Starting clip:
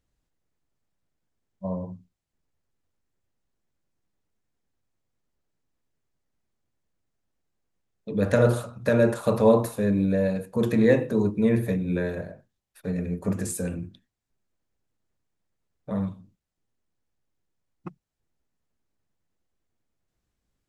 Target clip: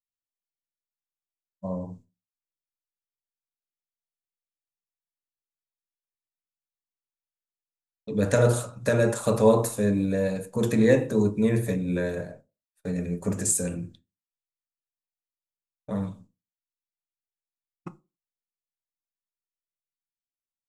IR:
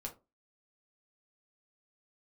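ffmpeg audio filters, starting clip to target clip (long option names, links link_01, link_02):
-filter_complex "[0:a]agate=range=-33dB:threshold=-40dB:ratio=3:detection=peak,equalizer=frequency=7600:width_type=o:width=0.96:gain=12.5,asplit=2[link_01][link_02];[1:a]atrim=start_sample=2205[link_03];[link_02][link_03]afir=irnorm=-1:irlink=0,volume=-3.5dB[link_04];[link_01][link_04]amix=inputs=2:normalize=0,volume=-3.5dB"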